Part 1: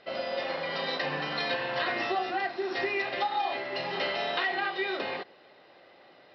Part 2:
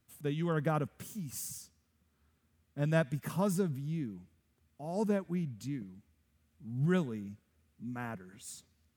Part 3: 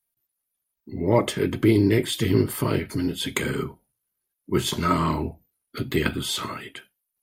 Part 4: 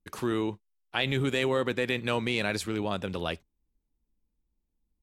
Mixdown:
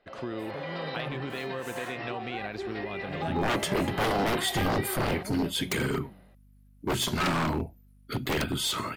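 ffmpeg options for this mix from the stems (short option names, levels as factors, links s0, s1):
-filter_complex "[0:a]lowpass=f=2100:p=1,dynaudnorm=f=150:g=5:m=2.82,volume=0.299[s0];[1:a]adelay=300,volume=0.376[s1];[2:a]aeval=exprs='0.0944*(abs(mod(val(0)/0.0944+3,4)-2)-1)':c=same,aeval=exprs='val(0)+0.00178*(sin(2*PI*50*n/s)+sin(2*PI*2*50*n/s)/2+sin(2*PI*3*50*n/s)/3+sin(2*PI*4*50*n/s)/4+sin(2*PI*5*50*n/s)/5)':c=same,adelay=2350,volume=0.891[s2];[3:a]lowpass=3600,volume=0.708,asplit=2[s3][s4];[s4]volume=0.0944[s5];[s0][s3]amix=inputs=2:normalize=0,acompressor=threshold=0.0282:ratio=6,volume=1[s6];[s5]aecho=0:1:865:1[s7];[s1][s2][s6][s7]amix=inputs=4:normalize=0"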